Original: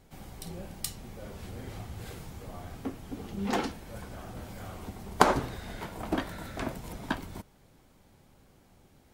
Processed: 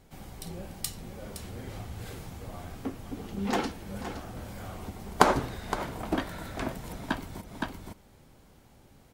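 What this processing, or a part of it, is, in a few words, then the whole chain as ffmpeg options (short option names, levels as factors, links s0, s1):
ducked delay: -filter_complex "[0:a]asplit=3[s0][s1][s2];[s1]adelay=516,volume=0.75[s3];[s2]apad=whole_len=425803[s4];[s3][s4]sidechaincompress=threshold=0.00447:ratio=6:attack=6.8:release=148[s5];[s0][s5]amix=inputs=2:normalize=0,volume=1.12"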